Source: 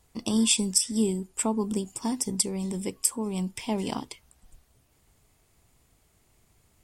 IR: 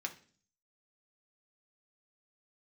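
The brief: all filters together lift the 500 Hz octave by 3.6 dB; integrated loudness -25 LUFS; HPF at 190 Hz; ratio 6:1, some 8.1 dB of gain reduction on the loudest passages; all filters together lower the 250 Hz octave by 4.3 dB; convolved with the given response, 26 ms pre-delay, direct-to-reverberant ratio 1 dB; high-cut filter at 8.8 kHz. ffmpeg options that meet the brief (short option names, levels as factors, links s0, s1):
-filter_complex "[0:a]highpass=190,lowpass=8800,equalizer=f=250:t=o:g=-4,equalizer=f=500:t=o:g=6.5,acompressor=threshold=0.0355:ratio=6,asplit=2[s0][s1];[1:a]atrim=start_sample=2205,adelay=26[s2];[s1][s2]afir=irnorm=-1:irlink=0,volume=0.841[s3];[s0][s3]amix=inputs=2:normalize=0,volume=2.51"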